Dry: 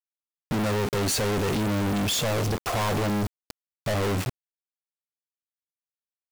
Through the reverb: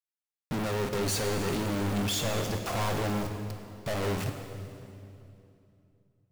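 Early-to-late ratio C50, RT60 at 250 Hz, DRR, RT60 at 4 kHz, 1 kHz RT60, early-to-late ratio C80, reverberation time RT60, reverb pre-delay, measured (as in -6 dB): 6.5 dB, 3.4 s, 5.5 dB, 2.4 s, 2.6 s, 7.5 dB, 2.8 s, 4 ms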